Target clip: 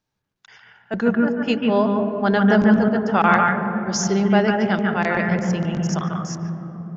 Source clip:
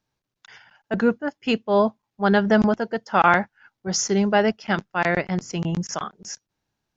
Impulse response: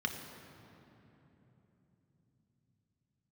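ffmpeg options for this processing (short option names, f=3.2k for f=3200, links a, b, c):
-filter_complex "[0:a]asplit=2[a][b];[1:a]atrim=start_sample=2205,lowpass=2.2k,adelay=144[c];[b][c]afir=irnorm=-1:irlink=0,volume=-4dB[d];[a][d]amix=inputs=2:normalize=0,volume=-1dB"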